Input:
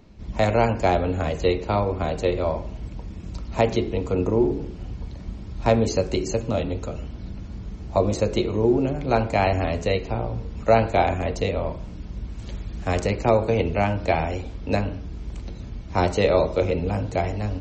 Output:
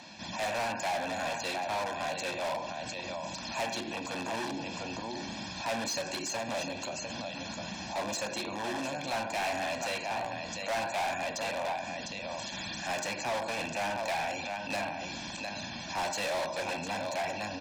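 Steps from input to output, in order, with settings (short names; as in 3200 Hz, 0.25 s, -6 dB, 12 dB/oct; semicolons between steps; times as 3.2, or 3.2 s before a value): tilt +3.5 dB/oct; on a send: echo 0.704 s -12.5 dB; on the sum: dynamic EQ 4000 Hz, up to -4 dB, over -39 dBFS, Q 0.94; in parallel at -3.5 dB: wrapped overs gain 23 dB; on the sum: BPF 230–6300 Hz; comb 1.2 ms, depth 88%; hard clip -21.5 dBFS, distortion -7 dB; compressor, threshold -32 dBFS, peak gain reduction 8.5 dB; limiter -32.5 dBFS, peak gain reduction 9.5 dB; gain +3.5 dB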